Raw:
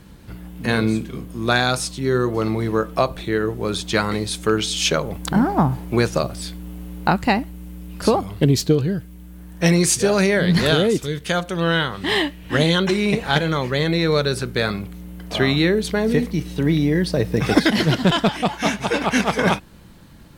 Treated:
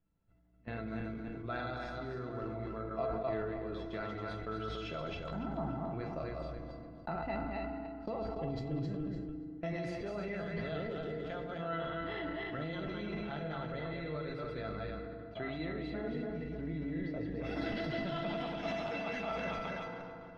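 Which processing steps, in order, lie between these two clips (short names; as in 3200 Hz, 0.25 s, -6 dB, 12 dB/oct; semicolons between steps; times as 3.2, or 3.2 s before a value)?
regenerating reverse delay 0.143 s, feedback 60%, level -2 dB; gate -22 dBFS, range -22 dB; high shelf 3200 Hz -7.5 dB, from 17.44 s +7 dB; compressor 2.5:1, threshold -25 dBFS, peak gain reduction 11.5 dB; air absorption 300 m; resonator 670 Hz, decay 0.16 s, harmonics all, mix 90%; FDN reverb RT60 1.9 s, low-frequency decay 1.3×, high-frequency decay 0.55×, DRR 8.5 dB; sustainer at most 20 dB/s; gain +1 dB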